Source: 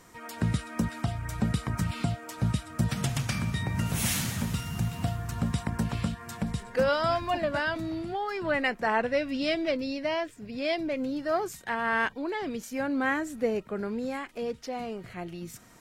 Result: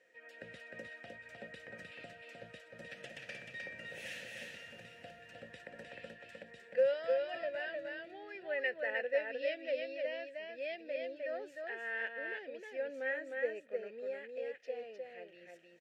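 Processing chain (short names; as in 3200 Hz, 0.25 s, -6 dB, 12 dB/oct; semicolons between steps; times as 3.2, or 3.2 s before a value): vowel filter e; low shelf 490 Hz -9 dB; echo 0.307 s -3.5 dB; gain +1.5 dB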